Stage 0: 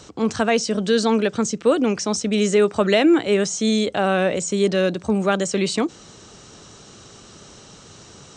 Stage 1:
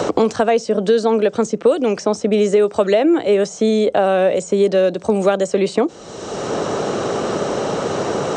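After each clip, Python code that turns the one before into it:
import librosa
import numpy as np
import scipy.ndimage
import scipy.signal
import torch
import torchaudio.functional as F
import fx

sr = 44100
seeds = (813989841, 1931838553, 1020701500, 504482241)

y = fx.peak_eq(x, sr, hz=560.0, db=12.0, octaves=1.7)
y = fx.band_squash(y, sr, depth_pct=100)
y = y * 10.0 ** (-5.0 / 20.0)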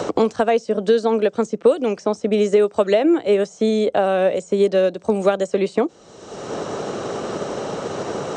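y = fx.upward_expand(x, sr, threshold_db=-30.0, expansion=1.5)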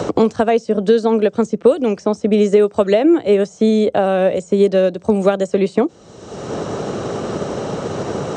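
y = scipy.signal.sosfilt(scipy.signal.butter(2, 50.0, 'highpass', fs=sr, output='sos'), x)
y = fx.low_shelf(y, sr, hz=190.0, db=11.5)
y = y * 10.0 ** (1.0 / 20.0)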